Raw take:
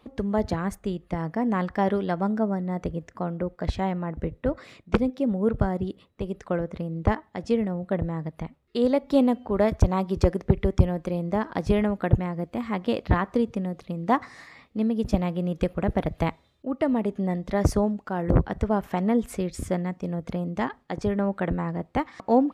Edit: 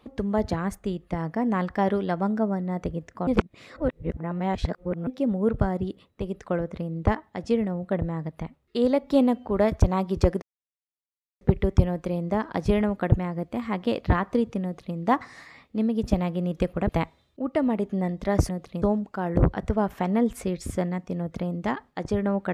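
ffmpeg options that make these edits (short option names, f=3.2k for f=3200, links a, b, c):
-filter_complex "[0:a]asplit=7[a][b][c][d][e][f][g];[a]atrim=end=3.272[h];[b]atrim=start=3.268:end=5.072,asetpts=PTS-STARTPTS,areverse[i];[c]atrim=start=5.068:end=10.42,asetpts=PTS-STARTPTS,afade=t=out:st=5.348:d=0.004:c=hsin,apad=pad_dur=0.99[j];[d]atrim=start=10.42:end=15.902,asetpts=PTS-STARTPTS,afade=t=in:d=0.004:c=hsin[k];[e]atrim=start=16.148:end=17.752[l];[f]atrim=start=13.638:end=13.972[m];[g]atrim=start=17.748[n];[h][i]acrossfade=d=0.004:c1=hsin:c2=hsin[o];[j][k]concat=n=2:v=0:a=1[p];[o][p]acrossfade=d=0.004:c1=hsin:c2=hsin[q];[q][l]acrossfade=d=0.004:c1=hsin:c2=hsin[r];[r][m]acrossfade=d=0.004:c1=hsin:c2=hsin[s];[s][n]acrossfade=d=0.004:c1=hsin:c2=hsin"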